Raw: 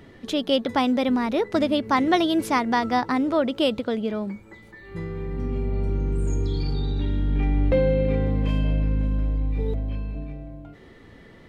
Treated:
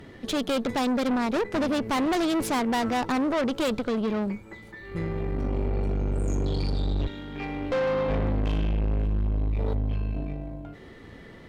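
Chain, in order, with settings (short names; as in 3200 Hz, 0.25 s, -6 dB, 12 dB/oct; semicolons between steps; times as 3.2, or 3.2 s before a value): 0.97–1.45 transient shaper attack +11 dB, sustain -5 dB; 7.06–8.08 HPF 1000 Hz -> 290 Hz 6 dB/oct; tube stage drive 28 dB, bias 0.65; gain +5.5 dB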